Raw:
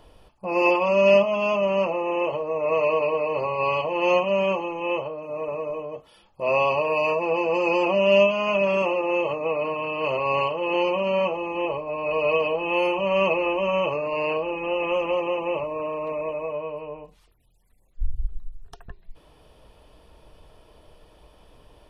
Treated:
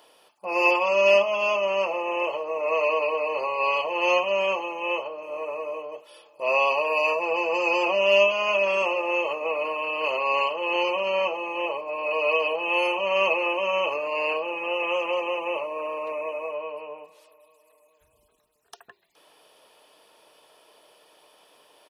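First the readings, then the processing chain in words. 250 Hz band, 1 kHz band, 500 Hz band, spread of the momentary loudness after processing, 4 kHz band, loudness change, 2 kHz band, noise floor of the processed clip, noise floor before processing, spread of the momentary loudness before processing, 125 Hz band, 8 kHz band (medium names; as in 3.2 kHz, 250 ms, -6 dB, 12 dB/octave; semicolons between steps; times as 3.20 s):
-8.5 dB, 0.0 dB, -2.5 dB, 12 LU, +3.0 dB, -0.5 dB, +3.0 dB, -64 dBFS, -57 dBFS, 12 LU, under -15 dB, no reading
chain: high-pass 370 Hz 12 dB/octave; tilt EQ +2 dB/octave; feedback delay 418 ms, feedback 59%, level -24 dB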